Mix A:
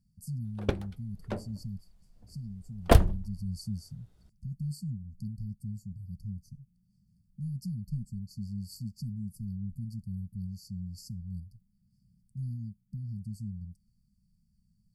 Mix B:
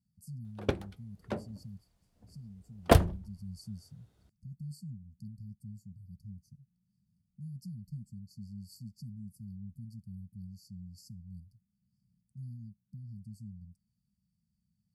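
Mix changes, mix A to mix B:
speech -7.0 dB; master: add HPF 76 Hz

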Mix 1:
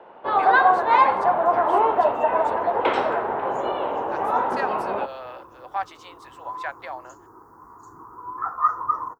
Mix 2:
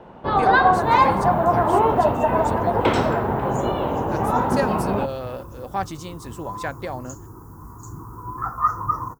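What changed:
speech: remove HPF 650 Hz 24 dB/oct; master: remove three-band isolator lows -22 dB, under 360 Hz, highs -17 dB, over 3800 Hz

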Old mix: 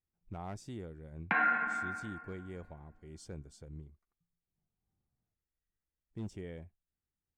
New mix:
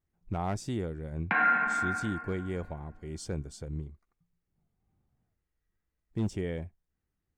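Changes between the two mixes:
speech +10.5 dB; background: send +9.0 dB

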